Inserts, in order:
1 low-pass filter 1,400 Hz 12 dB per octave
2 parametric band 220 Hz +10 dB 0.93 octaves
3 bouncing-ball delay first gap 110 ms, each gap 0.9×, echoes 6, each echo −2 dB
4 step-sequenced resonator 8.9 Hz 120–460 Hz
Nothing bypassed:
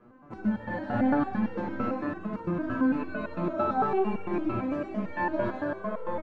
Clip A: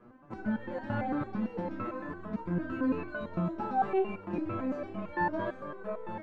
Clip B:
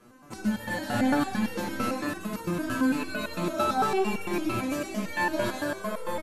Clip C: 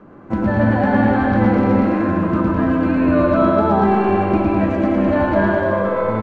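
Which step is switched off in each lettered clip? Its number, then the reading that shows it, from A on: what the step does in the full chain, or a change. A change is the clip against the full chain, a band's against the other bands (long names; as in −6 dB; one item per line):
3, change in integrated loudness −4.5 LU
1, 2 kHz band +5.0 dB
4, 125 Hz band +4.0 dB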